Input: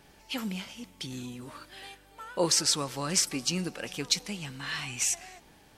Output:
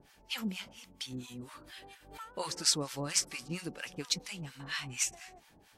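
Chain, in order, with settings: harmonic tremolo 4.3 Hz, depth 100%, crossover 860 Hz; 1.19–2.25 backwards sustainer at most 88 dB/s

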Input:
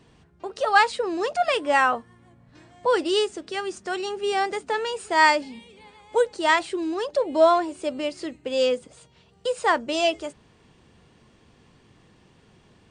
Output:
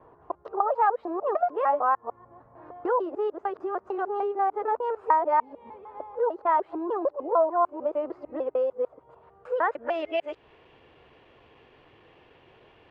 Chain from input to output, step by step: local time reversal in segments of 0.15 s; bell 530 Hz +12 dB 2.9 oct; compressor 2.5:1, threshold -24 dBFS, peak gain reduction 15 dB; low-pass sweep 1100 Hz -> 2800 Hz, 9.21–10.38; bell 200 Hz -13 dB 0.83 oct; gain -5.5 dB

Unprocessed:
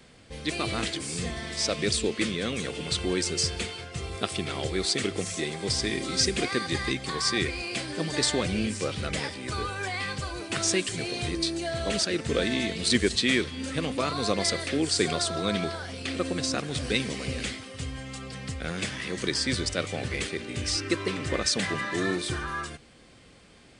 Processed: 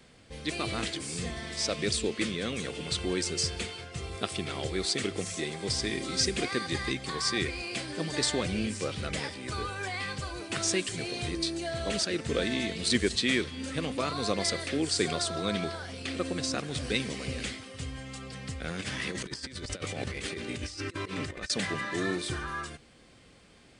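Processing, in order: 18.79–21.5 negative-ratio compressor -33 dBFS, ratio -0.5; gain -3 dB

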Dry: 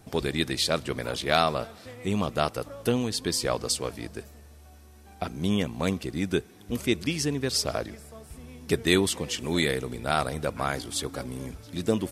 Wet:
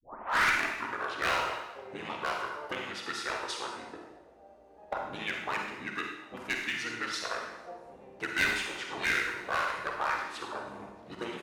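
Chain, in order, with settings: tape start at the beginning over 1.07 s; notches 50/100/150/200/250 Hz; auto-wah 590–2000 Hz, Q 2.8, up, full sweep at -23 dBFS; harmoniser -5 st 0 dB; in parallel at -9 dB: wavefolder -29.5 dBFS; on the sum: varispeed +6%; one-sided clip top -26.5 dBFS; on a send at -1 dB: reverb RT60 0.90 s, pre-delay 37 ms

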